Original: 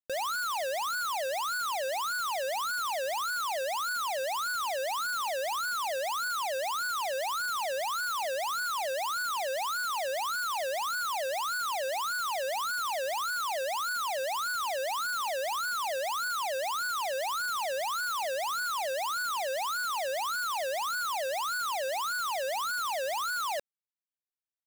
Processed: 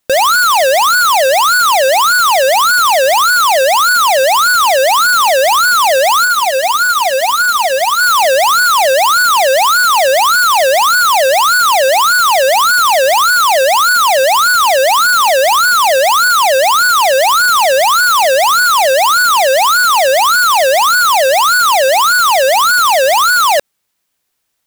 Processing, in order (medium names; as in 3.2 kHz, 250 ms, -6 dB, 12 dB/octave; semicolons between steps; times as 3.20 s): 6.25–8.00 s: comb 4.2 ms, depth 53%; loudness maximiser +35.5 dB; trim -8.5 dB